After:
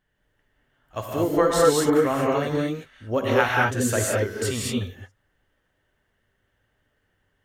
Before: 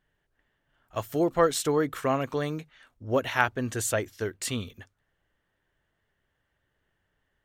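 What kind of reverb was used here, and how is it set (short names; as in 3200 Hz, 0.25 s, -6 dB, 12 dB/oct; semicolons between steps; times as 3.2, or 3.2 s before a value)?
non-linear reverb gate 0.25 s rising, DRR -3.5 dB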